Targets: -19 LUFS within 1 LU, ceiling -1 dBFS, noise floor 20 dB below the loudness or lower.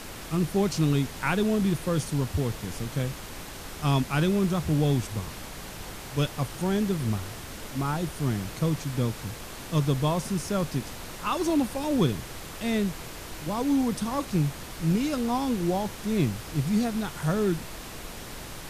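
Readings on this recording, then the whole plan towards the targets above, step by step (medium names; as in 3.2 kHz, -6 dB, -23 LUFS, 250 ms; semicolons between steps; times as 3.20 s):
noise floor -40 dBFS; noise floor target -48 dBFS; loudness -28.0 LUFS; peak level -11.5 dBFS; loudness target -19.0 LUFS
-> noise print and reduce 8 dB; trim +9 dB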